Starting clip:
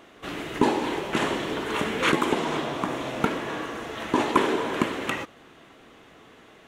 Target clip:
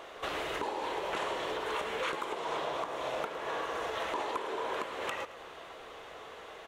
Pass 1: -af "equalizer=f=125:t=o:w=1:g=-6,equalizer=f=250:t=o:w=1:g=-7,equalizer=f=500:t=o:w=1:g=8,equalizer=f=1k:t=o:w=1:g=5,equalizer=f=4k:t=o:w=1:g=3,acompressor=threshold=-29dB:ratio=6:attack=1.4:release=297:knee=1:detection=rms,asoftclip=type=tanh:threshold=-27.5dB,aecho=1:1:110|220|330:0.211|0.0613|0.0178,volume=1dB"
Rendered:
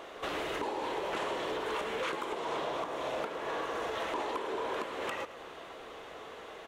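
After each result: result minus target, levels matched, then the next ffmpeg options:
soft clip: distortion +14 dB; 250 Hz band +3.0 dB
-af "equalizer=f=125:t=o:w=1:g=-6,equalizer=f=250:t=o:w=1:g=-7,equalizer=f=500:t=o:w=1:g=8,equalizer=f=1k:t=o:w=1:g=5,equalizer=f=4k:t=o:w=1:g=3,acompressor=threshold=-29dB:ratio=6:attack=1.4:release=297:knee=1:detection=rms,asoftclip=type=tanh:threshold=-19.5dB,aecho=1:1:110|220|330:0.211|0.0613|0.0178,volume=1dB"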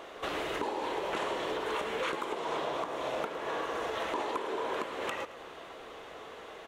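250 Hz band +3.0 dB
-af "equalizer=f=125:t=o:w=1:g=-6,equalizer=f=250:t=o:w=1:g=-7,equalizer=f=500:t=o:w=1:g=8,equalizer=f=1k:t=o:w=1:g=5,equalizer=f=4k:t=o:w=1:g=3,acompressor=threshold=-29dB:ratio=6:attack=1.4:release=297:knee=1:detection=rms,equalizer=f=260:w=1:g=-5,asoftclip=type=tanh:threshold=-19.5dB,aecho=1:1:110|220|330:0.211|0.0613|0.0178,volume=1dB"

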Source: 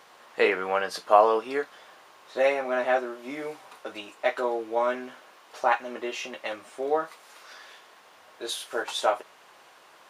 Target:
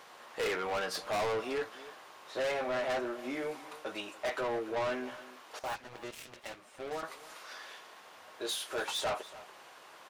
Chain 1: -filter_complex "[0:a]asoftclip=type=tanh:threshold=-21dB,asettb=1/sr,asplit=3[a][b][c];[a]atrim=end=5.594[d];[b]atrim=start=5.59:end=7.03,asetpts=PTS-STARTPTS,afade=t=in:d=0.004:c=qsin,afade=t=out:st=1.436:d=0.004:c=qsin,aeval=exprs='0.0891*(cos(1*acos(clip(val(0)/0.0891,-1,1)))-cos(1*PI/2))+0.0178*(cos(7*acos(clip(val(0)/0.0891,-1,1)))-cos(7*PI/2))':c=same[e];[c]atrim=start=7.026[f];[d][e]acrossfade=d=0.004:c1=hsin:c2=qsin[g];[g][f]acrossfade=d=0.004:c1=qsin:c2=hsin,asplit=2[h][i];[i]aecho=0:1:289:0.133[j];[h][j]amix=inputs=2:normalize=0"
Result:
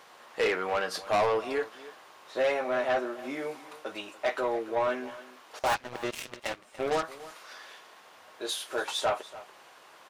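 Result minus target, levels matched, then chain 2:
soft clip: distortion -5 dB
-filter_complex "[0:a]asoftclip=type=tanh:threshold=-30dB,asettb=1/sr,asplit=3[a][b][c];[a]atrim=end=5.594[d];[b]atrim=start=5.59:end=7.03,asetpts=PTS-STARTPTS,afade=t=in:d=0.004:c=qsin,afade=t=out:st=1.436:d=0.004:c=qsin,aeval=exprs='0.0891*(cos(1*acos(clip(val(0)/0.0891,-1,1)))-cos(1*PI/2))+0.0178*(cos(7*acos(clip(val(0)/0.0891,-1,1)))-cos(7*PI/2))':c=same[e];[c]atrim=start=7.026[f];[d][e]acrossfade=d=0.004:c1=hsin:c2=qsin[g];[g][f]acrossfade=d=0.004:c1=qsin:c2=hsin,asplit=2[h][i];[i]aecho=0:1:289:0.133[j];[h][j]amix=inputs=2:normalize=0"

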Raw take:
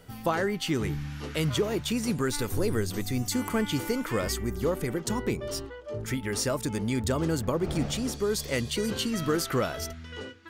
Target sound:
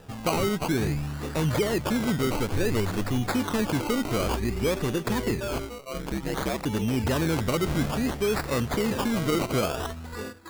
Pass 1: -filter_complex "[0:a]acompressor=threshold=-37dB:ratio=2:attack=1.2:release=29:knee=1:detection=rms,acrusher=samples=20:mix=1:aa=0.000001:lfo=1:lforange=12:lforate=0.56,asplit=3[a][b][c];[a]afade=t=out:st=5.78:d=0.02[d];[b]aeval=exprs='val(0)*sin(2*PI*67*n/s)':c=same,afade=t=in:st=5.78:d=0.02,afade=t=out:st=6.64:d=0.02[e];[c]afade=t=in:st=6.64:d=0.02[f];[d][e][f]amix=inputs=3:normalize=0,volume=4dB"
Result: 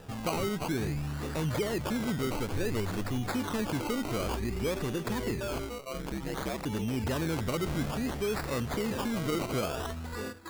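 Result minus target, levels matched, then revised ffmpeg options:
compressor: peak gain reduction +6 dB
-filter_complex "[0:a]acompressor=threshold=-25dB:ratio=2:attack=1.2:release=29:knee=1:detection=rms,acrusher=samples=20:mix=1:aa=0.000001:lfo=1:lforange=12:lforate=0.56,asplit=3[a][b][c];[a]afade=t=out:st=5.78:d=0.02[d];[b]aeval=exprs='val(0)*sin(2*PI*67*n/s)':c=same,afade=t=in:st=5.78:d=0.02,afade=t=out:st=6.64:d=0.02[e];[c]afade=t=in:st=6.64:d=0.02[f];[d][e][f]amix=inputs=3:normalize=0,volume=4dB"

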